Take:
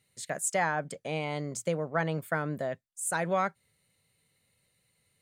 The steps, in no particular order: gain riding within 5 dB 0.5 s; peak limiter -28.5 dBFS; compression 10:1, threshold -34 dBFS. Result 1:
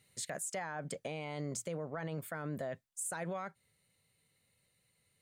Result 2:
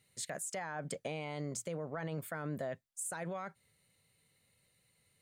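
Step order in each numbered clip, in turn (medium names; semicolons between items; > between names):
gain riding > peak limiter > compression; peak limiter > compression > gain riding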